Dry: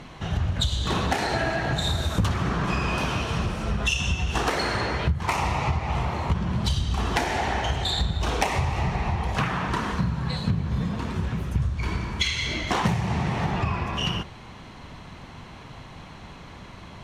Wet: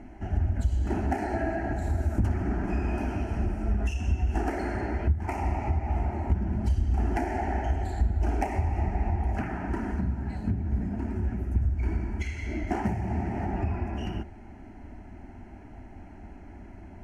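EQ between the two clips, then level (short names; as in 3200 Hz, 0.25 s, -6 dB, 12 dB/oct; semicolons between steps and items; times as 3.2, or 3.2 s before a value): tilt shelf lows +8.5 dB, about 890 Hz; fixed phaser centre 740 Hz, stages 8; -4.5 dB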